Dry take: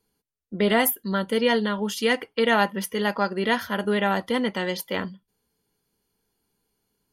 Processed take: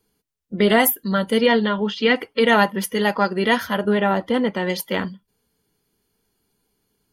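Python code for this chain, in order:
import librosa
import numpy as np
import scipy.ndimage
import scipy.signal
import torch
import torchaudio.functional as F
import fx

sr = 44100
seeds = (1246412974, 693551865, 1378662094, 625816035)

y = fx.spec_quant(x, sr, step_db=15)
y = fx.lowpass(y, sr, hz=4200.0, slope=24, at=(1.46, 2.16))
y = fx.high_shelf(y, sr, hz=3100.0, db=-11.0, at=(3.78, 4.7))
y = y * librosa.db_to_amplitude(5.0)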